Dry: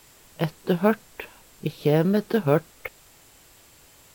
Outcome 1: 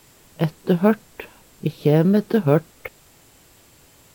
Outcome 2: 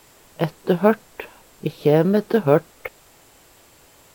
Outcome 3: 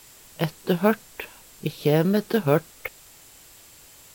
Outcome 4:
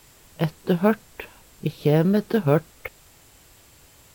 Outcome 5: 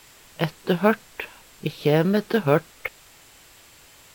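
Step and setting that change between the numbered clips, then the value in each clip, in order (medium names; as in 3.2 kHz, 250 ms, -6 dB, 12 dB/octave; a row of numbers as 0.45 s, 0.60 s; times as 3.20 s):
peaking EQ, frequency: 180 Hz, 580 Hz, 12 kHz, 61 Hz, 2.4 kHz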